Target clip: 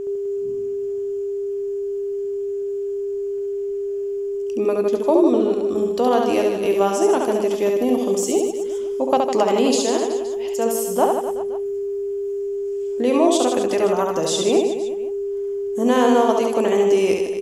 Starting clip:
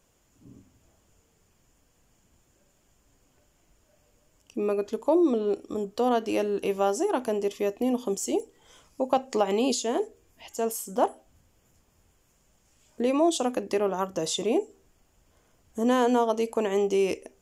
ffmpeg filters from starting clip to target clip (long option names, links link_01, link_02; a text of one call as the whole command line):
ffmpeg -i in.wav -af "aeval=exprs='val(0)+0.0316*sin(2*PI*400*n/s)':channel_layout=same,aecho=1:1:70|154|254.8|375.8|520.9:0.631|0.398|0.251|0.158|0.1,volume=5dB" out.wav